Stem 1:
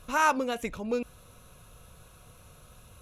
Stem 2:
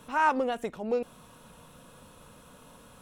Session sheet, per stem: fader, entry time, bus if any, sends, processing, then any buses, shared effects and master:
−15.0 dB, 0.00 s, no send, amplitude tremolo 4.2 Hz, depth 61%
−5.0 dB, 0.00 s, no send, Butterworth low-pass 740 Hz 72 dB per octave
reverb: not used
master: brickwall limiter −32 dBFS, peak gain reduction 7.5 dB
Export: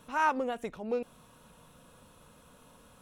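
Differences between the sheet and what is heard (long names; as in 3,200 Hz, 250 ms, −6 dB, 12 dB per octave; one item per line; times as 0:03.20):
stem 2: missing Butterworth low-pass 740 Hz 72 dB per octave
master: missing brickwall limiter −32 dBFS, peak gain reduction 7.5 dB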